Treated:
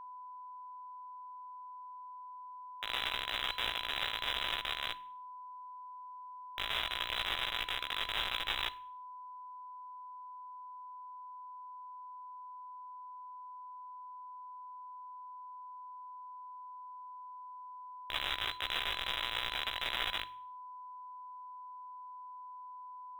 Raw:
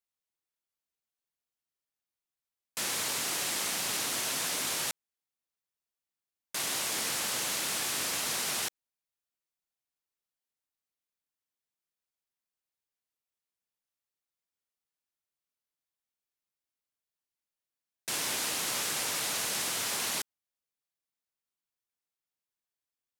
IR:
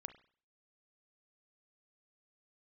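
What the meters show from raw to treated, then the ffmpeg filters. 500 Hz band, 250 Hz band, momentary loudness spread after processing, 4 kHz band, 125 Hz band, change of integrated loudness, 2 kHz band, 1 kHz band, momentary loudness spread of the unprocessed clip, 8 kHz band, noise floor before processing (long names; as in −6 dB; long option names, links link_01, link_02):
−6.5 dB, −11.5 dB, 15 LU, −0.5 dB, −4.5 dB, −9.0 dB, −0.5 dB, +3.0 dB, 5 LU, −26.0 dB, below −85 dBFS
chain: -filter_complex "[0:a]acrusher=bits=3:mix=0:aa=0.000001,flanger=delay=15:depth=2.7:speed=2.3,equalizer=frequency=650:width=1.5:gain=5,lowpass=frequency=3400:width_type=q:width=0.5098,lowpass=frequency=3400:width_type=q:width=0.6013,lowpass=frequency=3400:width_type=q:width=0.9,lowpass=frequency=3400:width_type=q:width=2.563,afreqshift=-4000,bandreject=frequency=46.6:width_type=h:width=4,bandreject=frequency=93.2:width_type=h:width=4,bandreject=frequency=139.8:width_type=h:width=4,bandreject=frequency=186.4:width_type=h:width=4,bandreject=frequency=233:width_type=h:width=4,bandreject=frequency=279.6:width_type=h:width=4,bandreject=frequency=326.2:width_type=h:width=4,asplit=2[link_01][link_02];[1:a]atrim=start_sample=2205,highshelf=frequency=2300:gain=8.5[link_03];[link_02][link_03]afir=irnorm=-1:irlink=0,volume=-1dB[link_04];[link_01][link_04]amix=inputs=2:normalize=0,asubboost=boost=5.5:cutoff=72,acrusher=bits=4:mode=log:mix=0:aa=0.000001,alimiter=level_in=10.5dB:limit=-24dB:level=0:latency=1:release=11,volume=-10.5dB,aeval=exprs='val(0)+0.00126*sin(2*PI*1000*n/s)':channel_layout=same,volume=12.5dB"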